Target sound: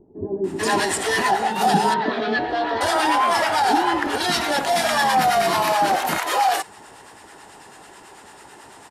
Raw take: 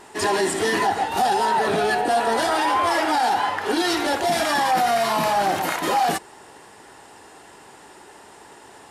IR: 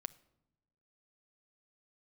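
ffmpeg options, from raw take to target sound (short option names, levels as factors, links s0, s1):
-filter_complex "[0:a]acrossover=split=910[s0][s1];[s0]aeval=exprs='val(0)*(1-0.5/2+0.5/2*cos(2*PI*9.1*n/s))':c=same[s2];[s1]aeval=exprs='val(0)*(1-0.5/2-0.5/2*cos(2*PI*9.1*n/s))':c=same[s3];[s2][s3]amix=inputs=2:normalize=0,asettb=1/sr,asplit=3[s4][s5][s6];[s4]atrim=end=1.504[s7];[s5]atrim=start=1.5:end=2.37,asetpts=PTS-STARTPTS,afade=t=in:d=0.004:c=qsin,afade=t=out:st=0.866:d=0.004:c=qsin,highpass=f=140:w=0.5412,highpass=f=140:w=1.3066,equalizer=f=190:t=q:w=4:g=9,equalizer=f=540:t=q:w=4:g=-4,equalizer=f=810:t=q:w=4:g=-8,equalizer=f=1400:t=q:w=4:g=-5,equalizer=f=2600:t=q:w=4:g=-7,lowpass=f=4000:w=0.5412,lowpass=f=4000:w=1.3066[s8];[s6]atrim=start=2.366[s9];[s7][s8]acrossfade=d=0.004:c1=hsin:c2=qsin[s10];[s10][s9]acrossfade=d=0.004:c1=qsin:c2=hsin,acrossover=split=420[s11][s12];[s12]adelay=440[s13];[s11][s13]amix=inputs=2:normalize=0,volume=1.68"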